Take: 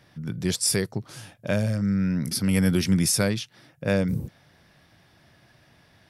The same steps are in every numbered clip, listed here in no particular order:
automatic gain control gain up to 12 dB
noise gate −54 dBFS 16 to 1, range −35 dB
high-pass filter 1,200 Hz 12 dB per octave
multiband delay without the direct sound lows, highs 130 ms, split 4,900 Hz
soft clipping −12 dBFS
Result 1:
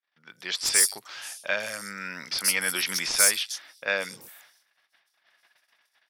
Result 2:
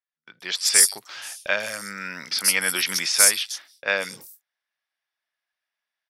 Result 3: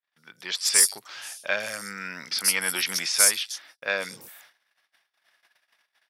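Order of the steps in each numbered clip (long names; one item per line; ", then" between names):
noise gate, then automatic gain control, then high-pass filter, then soft clipping, then multiband delay without the direct sound
high-pass filter, then noise gate, then multiband delay without the direct sound, then soft clipping, then automatic gain control
soft clipping, then multiband delay without the direct sound, then noise gate, then automatic gain control, then high-pass filter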